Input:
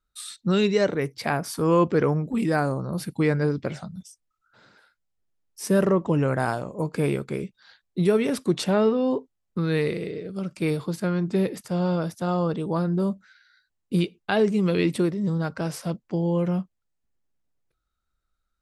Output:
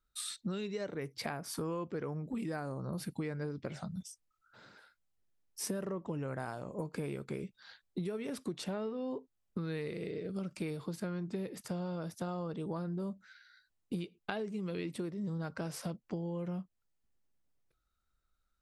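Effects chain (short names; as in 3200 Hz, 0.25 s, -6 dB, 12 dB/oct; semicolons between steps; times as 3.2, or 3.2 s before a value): compressor 12:1, threshold -33 dBFS, peak gain reduction 18 dB; gain -2 dB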